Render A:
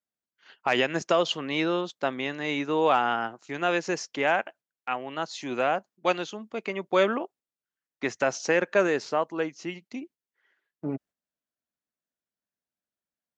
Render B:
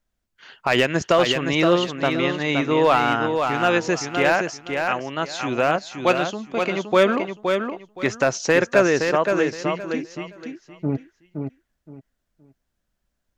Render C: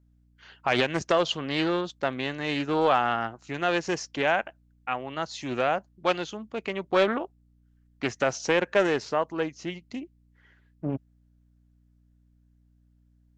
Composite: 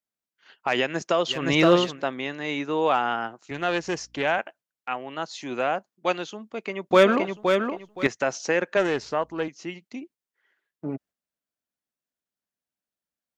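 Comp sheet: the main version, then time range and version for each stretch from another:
A
0:01.39–0:01.92: punch in from B, crossfade 0.24 s
0:03.51–0:04.38: punch in from C
0:06.91–0:08.07: punch in from B
0:08.77–0:09.48: punch in from C

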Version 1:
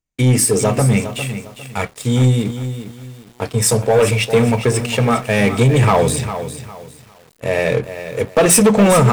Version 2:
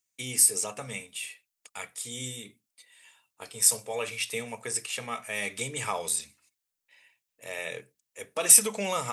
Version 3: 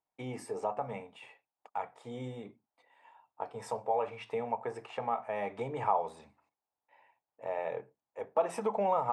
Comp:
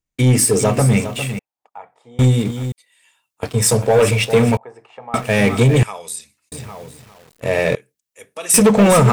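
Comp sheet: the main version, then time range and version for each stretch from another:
1
0:01.39–0:02.19: punch in from 3
0:02.72–0:03.43: punch in from 2
0:04.57–0:05.14: punch in from 3
0:05.83–0:06.52: punch in from 2
0:07.75–0:08.54: punch in from 2

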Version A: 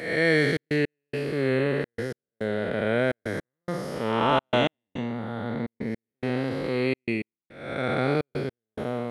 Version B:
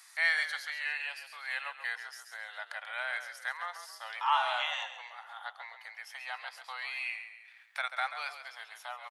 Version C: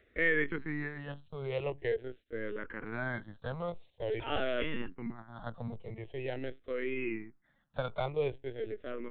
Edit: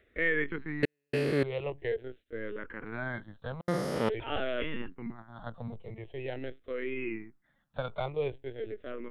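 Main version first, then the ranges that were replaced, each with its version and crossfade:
C
0:00.83–0:01.43: punch in from A
0:03.61–0:04.09: punch in from A
not used: B

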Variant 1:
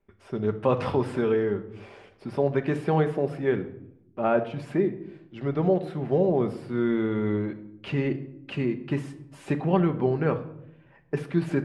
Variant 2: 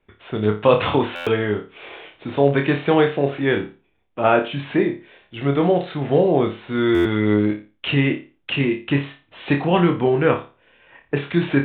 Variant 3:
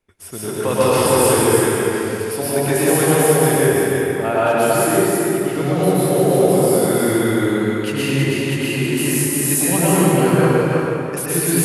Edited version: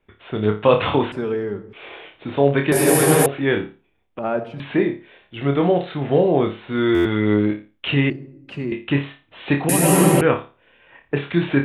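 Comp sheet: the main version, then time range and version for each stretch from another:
2
0:01.12–0:01.73: punch in from 1
0:02.72–0:03.26: punch in from 3
0:04.19–0:04.60: punch in from 1
0:08.10–0:08.72: punch in from 1
0:09.69–0:10.21: punch in from 3

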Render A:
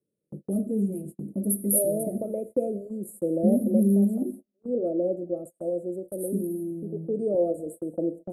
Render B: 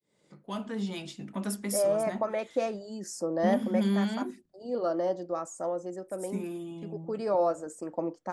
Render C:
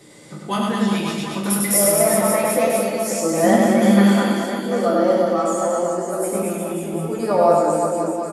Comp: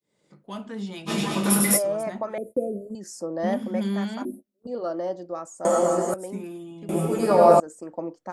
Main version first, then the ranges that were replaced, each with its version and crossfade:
B
0:01.09–0:01.77: punch in from C, crossfade 0.06 s
0:02.38–0:02.95: punch in from A
0:04.25–0:04.67: punch in from A
0:05.65–0:06.14: punch in from C
0:06.89–0:07.60: punch in from C

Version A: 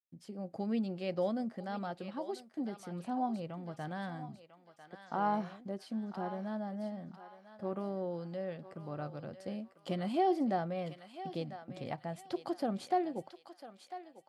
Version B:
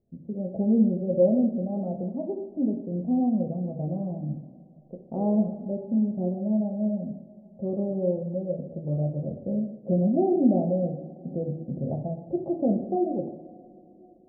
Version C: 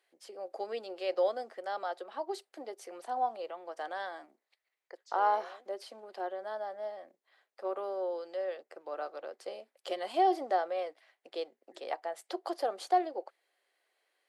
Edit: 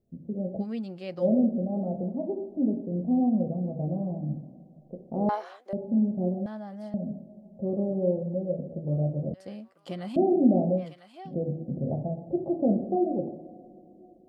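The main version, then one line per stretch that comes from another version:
B
0:00.62–0:01.23: punch in from A, crossfade 0.10 s
0:05.29–0:05.73: punch in from C
0:06.46–0:06.94: punch in from A
0:09.34–0:10.16: punch in from A
0:10.81–0:11.29: punch in from A, crossfade 0.10 s

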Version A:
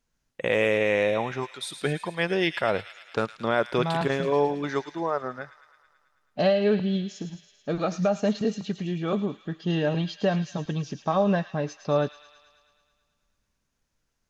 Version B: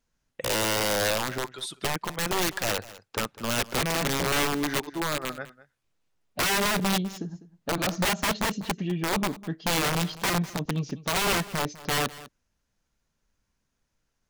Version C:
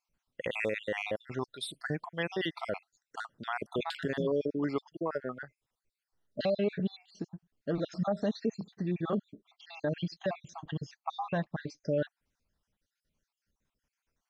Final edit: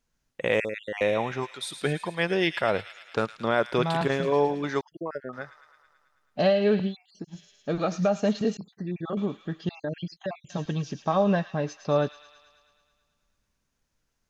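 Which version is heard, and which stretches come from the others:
A
0:00.60–0:01.01: punch in from C
0:04.81–0:05.33: punch in from C
0:06.90–0:07.32: punch in from C, crossfade 0.10 s
0:08.57–0:09.17: punch in from C
0:09.69–0:10.50: punch in from C
not used: B

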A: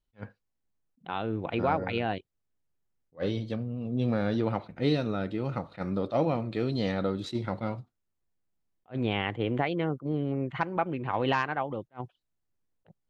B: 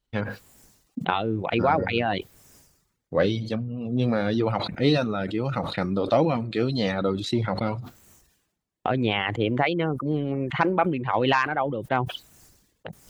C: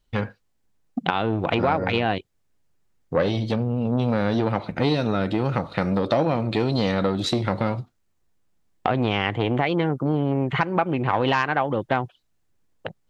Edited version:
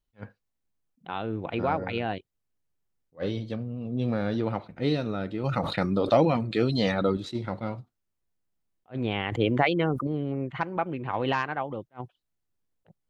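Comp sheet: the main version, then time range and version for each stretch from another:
A
0:05.44–0:07.17: punch in from B
0:09.32–0:10.07: punch in from B
not used: C

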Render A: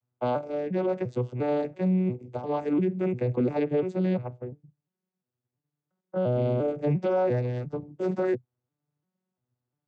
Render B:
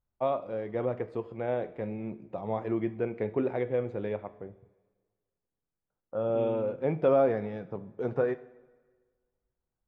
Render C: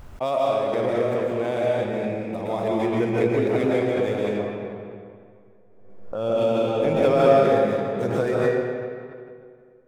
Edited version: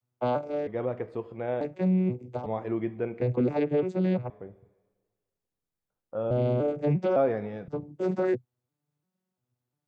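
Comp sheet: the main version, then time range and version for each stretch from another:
A
0:00.67–0:01.61: punch in from B
0:02.46–0:03.21: punch in from B
0:04.30–0:06.31: punch in from B
0:07.16–0:07.68: punch in from B
not used: C

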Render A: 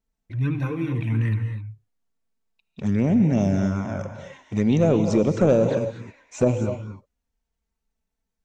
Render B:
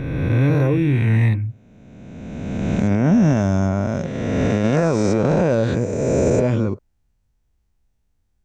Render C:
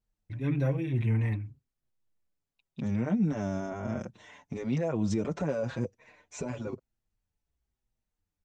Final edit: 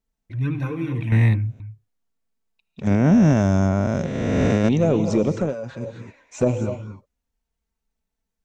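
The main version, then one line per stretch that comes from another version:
A
0:01.12–0:01.60: punch in from B
0:02.87–0:04.69: punch in from B
0:05.44–0:05.86: punch in from C, crossfade 0.24 s

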